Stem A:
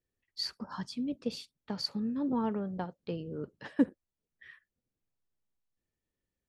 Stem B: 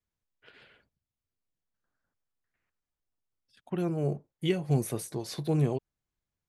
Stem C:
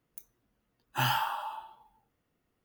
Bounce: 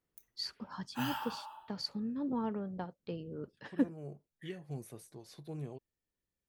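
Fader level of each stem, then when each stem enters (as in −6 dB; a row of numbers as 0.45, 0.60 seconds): −4.0, −16.0, −10.0 decibels; 0.00, 0.00, 0.00 seconds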